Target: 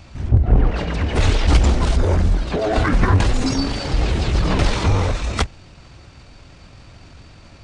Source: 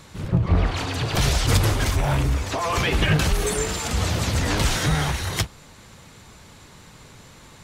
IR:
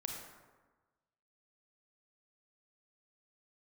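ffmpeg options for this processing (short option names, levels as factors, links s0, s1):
-filter_complex "[0:a]asplit=2[s0][s1];[s1]adynamicsmooth=sensitivity=1.5:basefreq=630,volume=0.794[s2];[s0][s2]amix=inputs=2:normalize=0,asetrate=27781,aresample=44100,atempo=1.5874,volume=1.12"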